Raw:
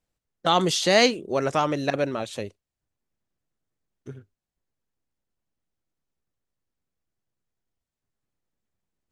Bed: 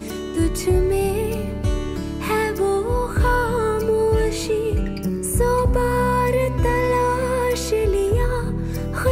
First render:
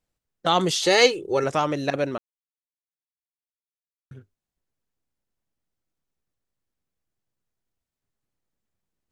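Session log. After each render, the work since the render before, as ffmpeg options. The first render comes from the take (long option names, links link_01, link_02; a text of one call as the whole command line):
ffmpeg -i in.wav -filter_complex "[0:a]asettb=1/sr,asplit=3[link_01][link_02][link_03];[link_01]atrim=end=0.834[link_04];[link_02]atrim=start=0.83:end=1.44,asetpts=PTS-STARTPTS,afade=type=in:duration=0.004:curve=qsin,afade=type=out:start_time=0.606:duration=0.004:curve=qsin,aecho=1:1:2.3:0.76,atrim=end_sample=26901[link_05];[link_03]atrim=start=1.436[link_06];[link_04][link_05]acrossfade=duration=0.004:curve1=hsin:curve2=qsin[link_07];[link_07][link_06]acrossfade=duration=0.004:curve1=qsin:curve2=hsin,asplit=3[link_08][link_09][link_10];[link_08]atrim=end=2.18,asetpts=PTS-STARTPTS,afade=type=out:start_time=2.176:duration=0.004:curve=hsin[link_11];[link_09]atrim=start=2.18:end=4.11,asetpts=PTS-STARTPTS,volume=0[link_12];[link_10]atrim=start=4.11,asetpts=PTS-STARTPTS,afade=type=in:duration=0.004:curve=hsin[link_13];[link_11][link_12][link_13]concat=n=3:v=0:a=1" out.wav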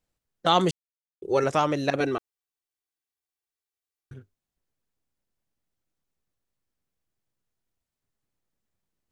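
ffmpeg -i in.wav -filter_complex "[0:a]asettb=1/sr,asplit=3[link_01][link_02][link_03];[link_01]atrim=end=2.004[link_04];[link_02]atrim=start=2:end=4.14,asetpts=PTS-STARTPTS,afade=type=in:duration=0.004:curve=qsin,afade=type=out:start_time=2.136:duration=0.004:curve=qsin,aecho=1:1:2.6:0.99,atrim=end_sample=94374[link_05];[link_03]atrim=start=4.136[link_06];[link_04][link_05]acrossfade=duration=0.004:curve1=hsin:curve2=qsin[link_07];[link_07][link_06]acrossfade=duration=0.004:curve1=qsin:curve2=hsin,asplit=3[link_08][link_09][link_10];[link_08]atrim=end=0.71,asetpts=PTS-STARTPTS,afade=type=out:start_time=0.706:duration=0.004:curve=hsin[link_11];[link_09]atrim=start=0.71:end=1.22,asetpts=PTS-STARTPTS,volume=0[link_12];[link_10]atrim=start=1.22,asetpts=PTS-STARTPTS,afade=type=in:duration=0.004:curve=hsin[link_13];[link_11][link_12][link_13]concat=n=3:v=0:a=1" out.wav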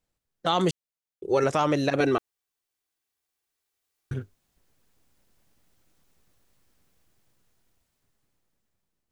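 ffmpeg -i in.wav -af "dynaudnorm=framelen=580:gausssize=7:maxgain=17dB,alimiter=limit=-12.5dB:level=0:latency=1:release=29" out.wav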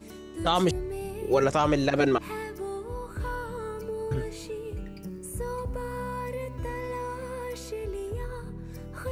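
ffmpeg -i in.wav -i bed.wav -filter_complex "[1:a]volume=-15dB[link_01];[0:a][link_01]amix=inputs=2:normalize=0" out.wav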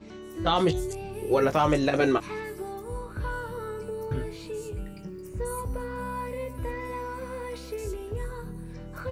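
ffmpeg -i in.wav -filter_complex "[0:a]asplit=2[link_01][link_02];[link_02]adelay=19,volume=-8dB[link_03];[link_01][link_03]amix=inputs=2:normalize=0,acrossover=split=5800[link_04][link_05];[link_05]adelay=220[link_06];[link_04][link_06]amix=inputs=2:normalize=0" out.wav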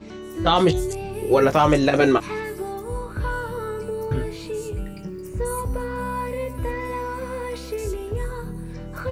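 ffmpeg -i in.wav -af "volume=6dB" out.wav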